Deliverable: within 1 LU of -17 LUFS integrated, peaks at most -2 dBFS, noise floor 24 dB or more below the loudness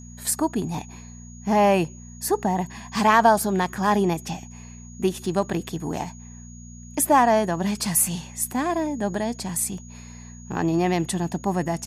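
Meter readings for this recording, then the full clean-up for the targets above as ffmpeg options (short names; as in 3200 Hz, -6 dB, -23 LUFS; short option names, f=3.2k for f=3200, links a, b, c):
hum 60 Hz; harmonics up to 240 Hz; hum level -40 dBFS; steady tone 6700 Hz; tone level -47 dBFS; loudness -23.5 LUFS; peak -4.5 dBFS; loudness target -17.0 LUFS
-> -af "bandreject=f=60:t=h:w=4,bandreject=f=120:t=h:w=4,bandreject=f=180:t=h:w=4,bandreject=f=240:t=h:w=4"
-af "bandreject=f=6.7k:w=30"
-af "volume=6.5dB,alimiter=limit=-2dB:level=0:latency=1"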